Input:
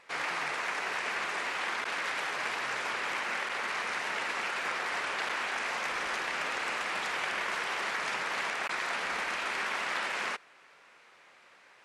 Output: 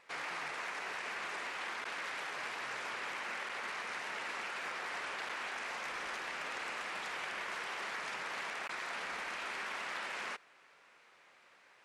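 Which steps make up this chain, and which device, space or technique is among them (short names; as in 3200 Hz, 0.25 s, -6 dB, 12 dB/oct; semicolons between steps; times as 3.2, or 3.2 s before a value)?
clipper into limiter (hard clip -24 dBFS, distortion -32 dB; limiter -27 dBFS, peak gain reduction 3 dB); gain -5 dB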